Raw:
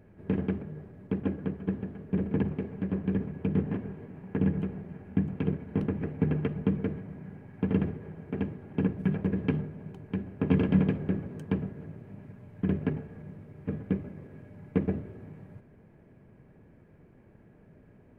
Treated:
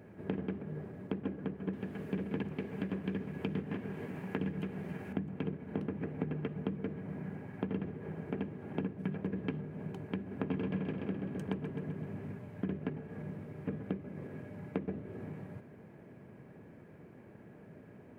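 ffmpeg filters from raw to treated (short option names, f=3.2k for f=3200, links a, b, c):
-filter_complex "[0:a]asettb=1/sr,asplit=3[a][b][c];[a]atrim=end=1.734[d];[b]atrim=start=1.73:end=5.13,asetpts=PTS-STARTPTS,afade=t=in:d=0.004:c=qsin,afade=t=out:st=3.396:d=0.004:c=qsin,highshelf=f=2k:g=12[e];[c]atrim=start=5.126[f];[d][e]acrossfade=d=0.004:c1=hsin:c2=qsin[g];[g][f]acrossfade=d=0.004:c1=qsin:c2=hsin,asettb=1/sr,asplit=3[h][i][j];[h]atrim=end=10.184[k];[i]atrim=start=10.18:end=12.38,asetpts=PTS-STARTPTS,afade=t=in:d=0.004:c=qsin,afade=t=out:st=2.196:d=0.004:c=qsin,aecho=1:1:129|258|387|516|645|774:0.447|0.228|0.116|0.0593|0.0302|0.0154,atrim=end_sample=97020[l];[j]atrim=start=12.376[m];[k][l]acrossfade=d=0.004:c1=hsin:c2=qsin[n];[n][m]acrossfade=d=0.004:c1=qsin:c2=hsin,highpass=87,lowshelf=f=110:g=-7.5,acompressor=threshold=-40dB:ratio=4,volume=5dB"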